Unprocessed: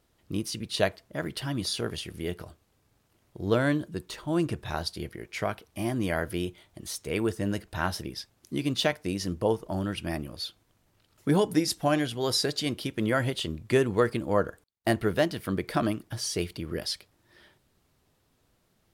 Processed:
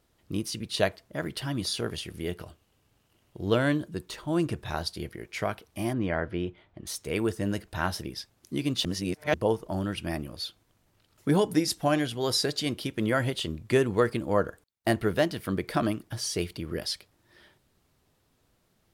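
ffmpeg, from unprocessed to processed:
ffmpeg -i in.wav -filter_complex "[0:a]asettb=1/sr,asplit=3[link_01][link_02][link_03];[link_01]atrim=end=2.394[link_04];[link_02]atrim=start=2.39:end=3.72,asetpts=PTS-STARTPTS,afade=type=in:duration=0.004:curve=qsin,afade=type=out:start_time=1.326:duration=0.004:curve=qsin,equalizer=frequency=2900:width_type=o:width=0.26:gain=8[link_05];[link_03]atrim=start=3.716[link_06];[link_04][link_05]acrossfade=duration=0.004:curve1=hsin:curve2=qsin[link_07];[link_07][link_06]acrossfade=duration=0.004:curve1=qsin:curve2=hsin,asettb=1/sr,asplit=3[link_08][link_09][link_10];[link_08]atrim=end=5.934[link_11];[link_09]atrim=start=5.93:end=6.87,asetpts=PTS-STARTPTS,afade=type=in:duration=0.004:curve=qsin,afade=type=out:start_time=0.936:duration=0.004:curve=qsin,lowpass=2400[link_12];[link_10]atrim=start=6.866[link_13];[link_11][link_12]acrossfade=duration=0.004:curve1=hsin:curve2=qsin[link_14];[link_14][link_13]acrossfade=duration=0.004:curve1=qsin:curve2=hsin,asplit=3[link_15][link_16][link_17];[link_15]atrim=end=8.852[link_18];[link_16]atrim=start=8.848:end=9.342,asetpts=PTS-STARTPTS,areverse[link_19];[link_17]atrim=start=9.338[link_20];[link_18][link_19]acrossfade=duration=0.004:curve1=hsin:curve2=hsin[link_21];[link_21][link_20]acrossfade=duration=0.004:curve1=hsin:curve2=hsin" out.wav

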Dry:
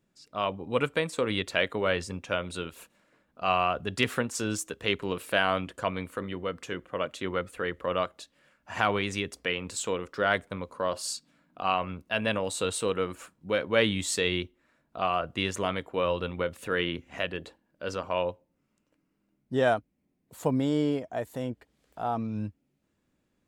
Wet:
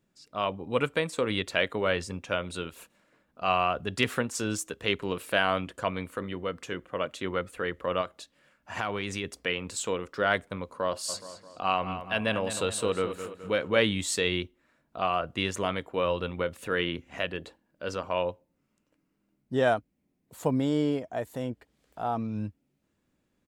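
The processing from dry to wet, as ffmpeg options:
ffmpeg -i in.wav -filter_complex "[0:a]asettb=1/sr,asplit=3[link_01][link_02][link_03];[link_01]atrim=end=8.014[link_04];[link_02]atrim=start=8.01:end=9.24,asetpts=PTS-STARTPTS,afade=type=in:duration=0.004:curve=qsin,afade=type=out:start_time=1.226:duration=0.004:curve=qsin,acompressor=threshold=-28dB:ratio=2.5:attack=3.2:release=140:knee=1:detection=peak[link_05];[link_03]atrim=start=9.236[link_06];[link_04][link_05]acrossfade=duration=0.004:curve1=hsin:curve2=qsin[link_07];[link_07][link_06]acrossfade=duration=0.004:curve1=qsin:curve2=hsin,asplit=3[link_08][link_09][link_10];[link_08]afade=type=out:start_time=11.08:duration=0.02[link_11];[link_09]asplit=2[link_12][link_13];[link_13]adelay=211,lowpass=frequency=3600:poles=1,volume=-10dB,asplit=2[link_14][link_15];[link_15]adelay=211,lowpass=frequency=3600:poles=1,volume=0.5,asplit=2[link_16][link_17];[link_17]adelay=211,lowpass=frequency=3600:poles=1,volume=0.5,asplit=2[link_18][link_19];[link_19]adelay=211,lowpass=frequency=3600:poles=1,volume=0.5,asplit=2[link_20][link_21];[link_21]adelay=211,lowpass=frequency=3600:poles=1,volume=0.5[link_22];[link_12][link_14][link_16][link_18][link_20][link_22]amix=inputs=6:normalize=0,afade=type=in:start_time=11.08:duration=0.02,afade=type=out:start_time=13.78:duration=0.02[link_23];[link_10]afade=type=in:start_time=13.78:duration=0.02[link_24];[link_11][link_23][link_24]amix=inputs=3:normalize=0" out.wav

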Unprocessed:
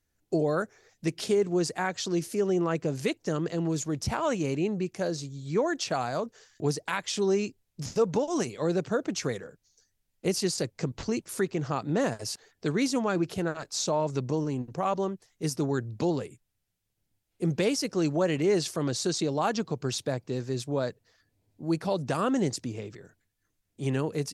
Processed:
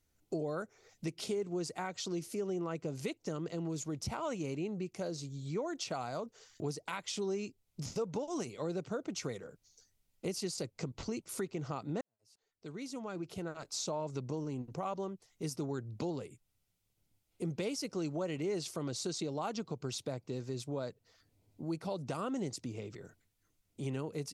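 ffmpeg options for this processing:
ffmpeg -i in.wav -filter_complex "[0:a]asplit=2[link_01][link_02];[link_01]atrim=end=12.01,asetpts=PTS-STARTPTS,afade=type=out:start_time=12.006:duration=0.004:curve=hsin[link_03];[link_02]atrim=start=12.01,asetpts=PTS-STARTPTS,afade=type=in:duration=1.78:curve=qua[link_04];[link_03][link_04]concat=n=2:v=0:a=1,bandreject=frequency=1700:width=6.5,acompressor=threshold=-44dB:ratio=2,volume=1dB" out.wav

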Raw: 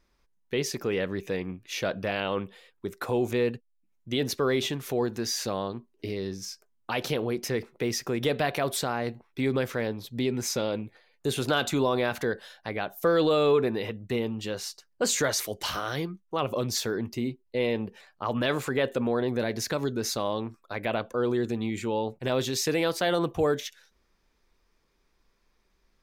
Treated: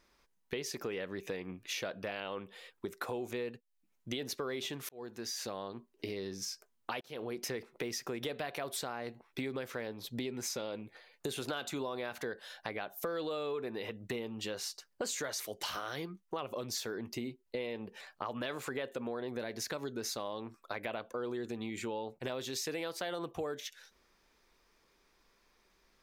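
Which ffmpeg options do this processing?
ffmpeg -i in.wav -filter_complex "[0:a]asplit=3[link_01][link_02][link_03];[link_01]atrim=end=4.89,asetpts=PTS-STARTPTS,afade=type=out:start_time=4.886:duration=0.004:curve=hsin[link_04];[link_02]atrim=start=4.89:end=7.01,asetpts=PTS-STARTPTS,afade=type=in:duration=1.29,afade=type=out:start_time=2.116:duration=0.004:curve=hsin[link_05];[link_03]atrim=start=7.01,asetpts=PTS-STARTPTS,afade=type=in:duration=0.49[link_06];[link_04][link_05][link_06]concat=n=3:v=0:a=1,lowshelf=frequency=190:gain=-10.5,acompressor=threshold=-41dB:ratio=5,volume=4dB" out.wav

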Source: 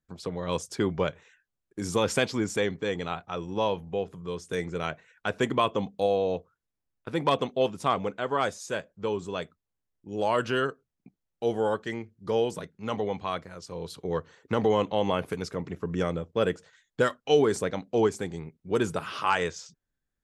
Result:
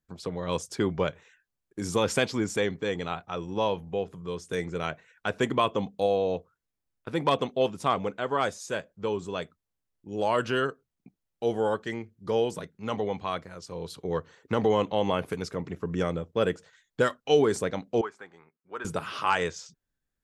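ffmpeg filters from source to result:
ffmpeg -i in.wav -filter_complex "[0:a]asettb=1/sr,asplit=3[link_01][link_02][link_03];[link_01]atrim=end=18.014[link_04];[link_02]atrim=start=18.01:end=18.85,asetpts=PTS-STARTPTS,afade=type=in:duration=0.004:curve=qsin,afade=type=out:start_time=0.836:duration=0.004:curve=qsin,bandpass=frequency=1300:width_type=q:width=2.1[link_05];[link_03]atrim=start=18.846[link_06];[link_04][link_05]acrossfade=duration=0.004:curve1=hsin:curve2=qsin[link_07];[link_07][link_06]acrossfade=duration=0.004:curve1=qsin:curve2=hsin" out.wav

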